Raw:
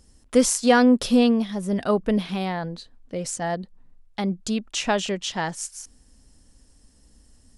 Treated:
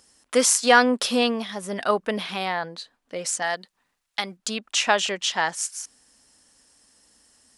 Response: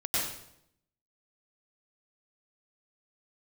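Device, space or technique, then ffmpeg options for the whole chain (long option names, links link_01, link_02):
filter by subtraction: -filter_complex "[0:a]asettb=1/sr,asplit=3[link_01][link_02][link_03];[link_01]atrim=end=3.424[link_04];[link_02]atrim=start=3.42:end=4.37,asetpts=PTS-STARTPTS,afade=type=in:duration=0.004:curve=qsin,afade=type=out:start_time=0.946:duration=0.004:curve=qsin,tiltshelf=frequency=1300:gain=-6[link_05];[link_03]atrim=start=4.366[link_06];[link_04][link_05]acrossfade=duration=0.004:curve1=hsin:curve2=qsin[link_07];[link_07][link_06]acrossfade=duration=0.004:curve1=qsin:curve2=hsin,asplit=2[link_08][link_09];[link_09]lowpass=1300,volume=-1[link_10];[link_08][link_10]amix=inputs=2:normalize=0,volume=4dB"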